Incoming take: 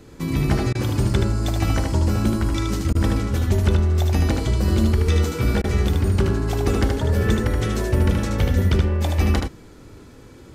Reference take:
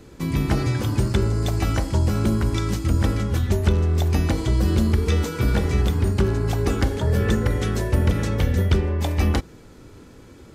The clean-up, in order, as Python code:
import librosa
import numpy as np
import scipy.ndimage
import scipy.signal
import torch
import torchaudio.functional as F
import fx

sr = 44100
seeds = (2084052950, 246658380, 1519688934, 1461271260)

y = fx.fix_interpolate(x, sr, at_s=(0.73, 2.93, 5.62), length_ms=19.0)
y = fx.fix_echo_inverse(y, sr, delay_ms=76, level_db=-4.5)